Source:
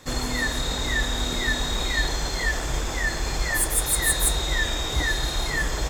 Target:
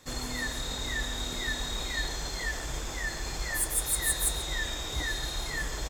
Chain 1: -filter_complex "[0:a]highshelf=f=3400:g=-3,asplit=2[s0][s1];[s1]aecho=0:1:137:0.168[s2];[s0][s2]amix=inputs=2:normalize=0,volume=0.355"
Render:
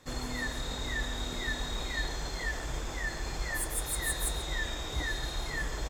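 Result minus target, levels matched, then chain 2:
8 kHz band -3.0 dB
-filter_complex "[0:a]highshelf=f=3400:g=4,asplit=2[s0][s1];[s1]aecho=0:1:137:0.168[s2];[s0][s2]amix=inputs=2:normalize=0,volume=0.355"

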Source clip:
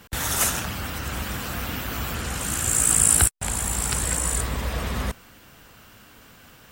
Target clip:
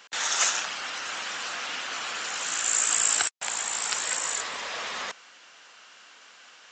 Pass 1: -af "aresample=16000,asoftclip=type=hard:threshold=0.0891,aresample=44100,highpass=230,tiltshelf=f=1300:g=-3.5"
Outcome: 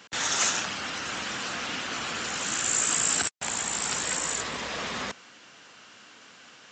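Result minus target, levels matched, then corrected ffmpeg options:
250 Hz band +12.5 dB; hard clipper: distortion +11 dB
-af "aresample=16000,asoftclip=type=hard:threshold=0.188,aresample=44100,highpass=590,tiltshelf=f=1300:g=-3.5"

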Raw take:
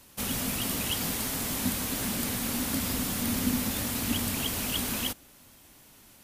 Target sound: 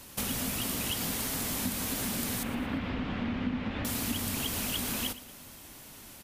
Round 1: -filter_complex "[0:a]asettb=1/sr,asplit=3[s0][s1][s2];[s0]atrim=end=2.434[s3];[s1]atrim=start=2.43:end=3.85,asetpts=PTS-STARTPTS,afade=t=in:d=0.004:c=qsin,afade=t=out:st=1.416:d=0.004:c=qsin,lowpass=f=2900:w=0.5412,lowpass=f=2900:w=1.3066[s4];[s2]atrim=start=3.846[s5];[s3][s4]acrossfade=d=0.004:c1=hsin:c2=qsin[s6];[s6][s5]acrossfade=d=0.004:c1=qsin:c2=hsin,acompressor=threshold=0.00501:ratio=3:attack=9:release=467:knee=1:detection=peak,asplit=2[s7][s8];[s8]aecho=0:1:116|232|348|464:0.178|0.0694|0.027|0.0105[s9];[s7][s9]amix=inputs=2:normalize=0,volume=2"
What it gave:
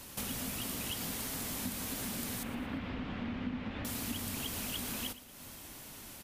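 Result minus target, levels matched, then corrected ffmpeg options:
compression: peak gain reduction +5.5 dB
-filter_complex "[0:a]asettb=1/sr,asplit=3[s0][s1][s2];[s0]atrim=end=2.434[s3];[s1]atrim=start=2.43:end=3.85,asetpts=PTS-STARTPTS,afade=t=in:d=0.004:c=qsin,afade=t=out:st=1.416:d=0.004:c=qsin,lowpass=f=2900:w=0.5412,lowpass=f=2900:w=1.3066[s4];[s2]atrim=start=3.846[s5];[s3][s4]acrossfade=d=0.004:c1=hsin:c2=qsin[s6];[s6][s5]acrossfade=d=0.004:c1=qsin:c2=hsin,acompressor=threshold=0.0133:ratio=3:attack=9:release=467:knee=1:detection=peak,asplit=2[s7][s8];[s8]aecho=0:1:116|232|348|464:0.178|0.0694|0.027|0.0105[s9];[s7][s9]amix=inputs=2:normalize=0,volume=2"

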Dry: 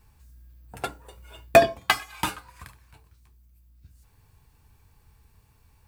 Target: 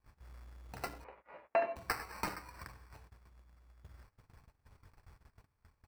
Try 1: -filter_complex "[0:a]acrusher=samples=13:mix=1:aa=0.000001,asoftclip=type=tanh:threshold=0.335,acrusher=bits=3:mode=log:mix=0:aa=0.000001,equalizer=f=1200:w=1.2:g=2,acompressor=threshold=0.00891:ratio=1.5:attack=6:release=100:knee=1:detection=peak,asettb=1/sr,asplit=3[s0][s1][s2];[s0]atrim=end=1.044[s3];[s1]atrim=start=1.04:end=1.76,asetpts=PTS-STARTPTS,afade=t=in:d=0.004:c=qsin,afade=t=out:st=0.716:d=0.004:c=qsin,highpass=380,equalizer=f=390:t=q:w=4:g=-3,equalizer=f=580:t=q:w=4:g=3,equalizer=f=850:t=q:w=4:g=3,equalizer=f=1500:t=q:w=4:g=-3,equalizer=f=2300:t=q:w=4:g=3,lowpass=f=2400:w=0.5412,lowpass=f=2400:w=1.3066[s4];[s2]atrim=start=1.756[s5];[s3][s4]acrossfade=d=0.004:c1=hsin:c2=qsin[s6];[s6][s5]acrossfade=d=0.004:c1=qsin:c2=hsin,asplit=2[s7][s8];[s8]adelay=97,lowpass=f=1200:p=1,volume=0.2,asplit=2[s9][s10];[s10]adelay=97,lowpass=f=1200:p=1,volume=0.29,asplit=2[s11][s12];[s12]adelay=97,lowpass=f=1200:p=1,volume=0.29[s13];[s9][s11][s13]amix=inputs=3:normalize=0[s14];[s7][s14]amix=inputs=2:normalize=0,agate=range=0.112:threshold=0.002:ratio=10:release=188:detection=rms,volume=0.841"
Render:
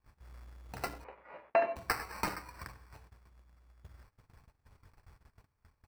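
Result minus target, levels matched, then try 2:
compression: peak gain reduction -3.5 dB
-filter_complex "[0:a]acrusher=samples=13:mix=1:aa=0.000001,asoftclip=type=tanh:threshold=0.335,acrusher=bits=3:mode=log:mix=0:aa=0.000001,equalizer=f=1200:w=1.2:g=2,acompressor=threshold=0.00282:ratio=1.5:attack=6:release=100:knee=1:detection=peak,asettb=1/sr,asplit=3[s0][s1][s2];[s0]atrim=end=1.044[s3];[s1]atrim=start=1.04:end=1.76,asetpts=PTS-STARTPTS,afade=t=in:d=0.004:c=qsin,afade=t=out:st=0.716:d=0.004:c=qsin,highpass=380,equalizer=f=390:t=q:w=4:g=-3,equalizer=f=580:t=q:w=4:g=3,equalizer=f=850:t=q:w=4:g=3,equalizer=f=1500:t=q:w=4:g=-3,equalizer=f=2300:t=q:w=4:g=3,lowpass=f=2400:w=0.5412,lowpass=f=2400:w=1.3066[s4];[s2]atrim=start=1.756[s5];[s3][s4]acrossfade=d=0.004:c1=hsin:c2=qsin[s6];[s6][s5]acrossfade=d=0.004:c1=qsin:c2=hsin,asplit=2[s7][s8];[s8]adelay=97,lowpass=f=1200:p=1,volume=0.2,asplit=2[s9][s10];[s10]adelay=97,lowpass=f=1200:p=1,volume=0.29,asplit=2[s11][s12];[s12]adelay=97,lowpass=f=1200:p=1,volume=0.29[s13];[s9][s11][s13]amix=inputs=3:normalize=0[s14];[s7][s14]amix=inputs=2:normalize=0,agate=range=0.112:threshold=0.002:ratio=10:release=188:detection=rms,volume=0.841"

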